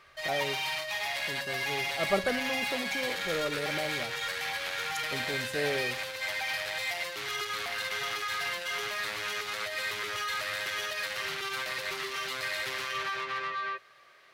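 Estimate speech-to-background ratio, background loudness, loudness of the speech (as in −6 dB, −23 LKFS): −4.0 dB, −32.0 LKFS, −36.0 LKFS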